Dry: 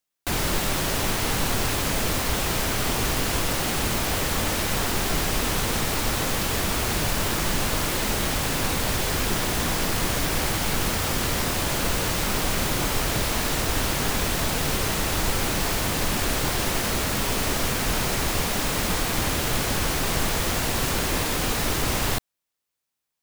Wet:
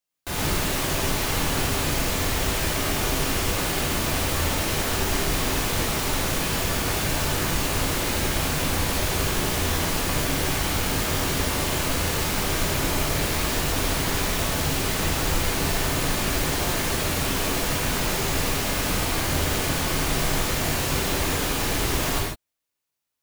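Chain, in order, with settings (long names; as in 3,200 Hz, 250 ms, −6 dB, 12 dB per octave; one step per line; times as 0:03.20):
reverb whose tail is shaped and stops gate 180 ms flat, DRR −5 dB
level −6 dB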